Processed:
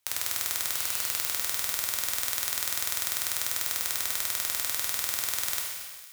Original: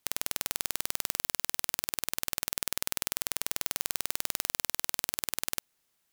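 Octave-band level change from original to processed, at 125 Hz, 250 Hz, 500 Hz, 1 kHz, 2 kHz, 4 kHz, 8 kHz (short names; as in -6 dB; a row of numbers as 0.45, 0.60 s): n/a, -4.0 dB, -1.0 dB, +2.5 dB, +4.5 dB, +4.0 dB, +4.5 dB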